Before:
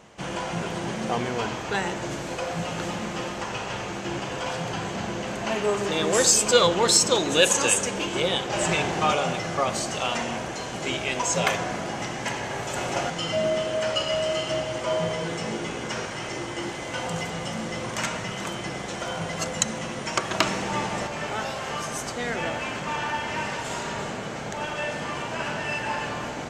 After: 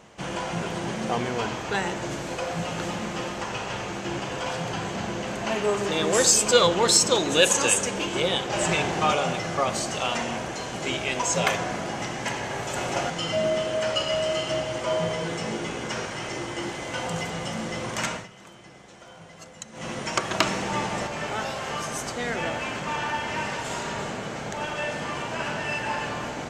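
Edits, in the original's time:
18.11–19.89 dip -16 dB, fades 0.17 s

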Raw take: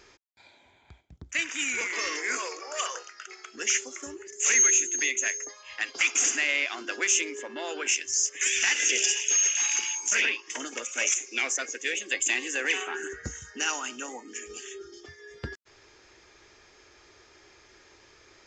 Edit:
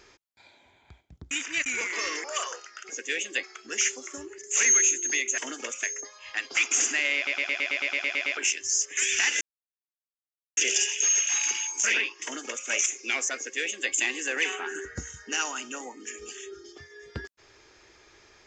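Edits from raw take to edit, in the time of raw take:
1.31–1.66 reverse
2.24–2.67 cut
6.6 stutter in place 0.11 s, 11 plays
8.85 insert silence 1.16 s
10.51–10.96 copy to 5.27
11.65–12.19 copy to 3.32

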